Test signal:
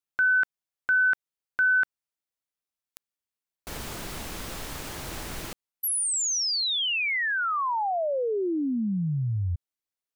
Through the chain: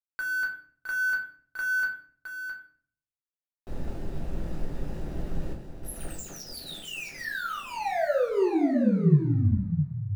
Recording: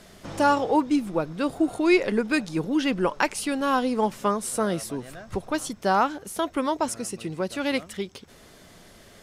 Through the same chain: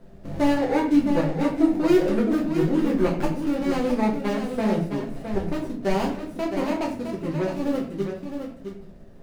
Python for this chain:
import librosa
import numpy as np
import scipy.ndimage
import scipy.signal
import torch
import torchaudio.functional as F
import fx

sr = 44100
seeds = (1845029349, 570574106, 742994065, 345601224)

y = scipy.signal.medfilt(x, 41)
y = y + 10.0 ** (-7.5 / 20.0) * np.pad(y, (int(663 * sr / 1000.0), 0))[:len(y)]
y = fx.room_shoebox(y, sr, seeds[0], volume_m3=57.0, walls='mixed', distance_m=0.82)
y = F.gain(torch.from_numpy(y), -1.0).numpy()